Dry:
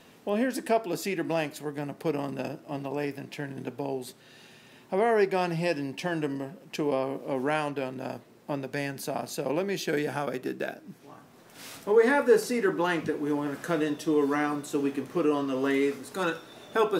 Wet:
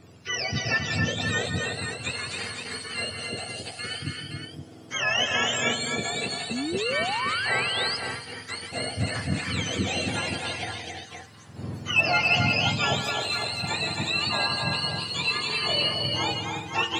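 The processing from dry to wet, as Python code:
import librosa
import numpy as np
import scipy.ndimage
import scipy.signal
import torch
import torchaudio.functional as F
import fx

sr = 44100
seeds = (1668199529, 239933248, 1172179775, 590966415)

p1 = fx.octave_mirror(x, sr, pivot_hz=1100.0)
p2 = np.clip(p1, -10.0 ** (-21.0 / 20.0), 10.0 ** (-21.0 / 20.0))
p3 = p1 + (p2 * 10.0 ** (-11.5 / 20.0))
p4 = fx.echo_multitap(p3, sr, ms=(165, 270, 344, 518), db=(-9.0, -4.5, -10.5, -7.0))
y = fx.spec_paint(p4, sr, seeds[0], shape='rise', start_s=6.51, length_s=1.46, low_hz=220.0, high_hz=5200.0, level_db=-30.0)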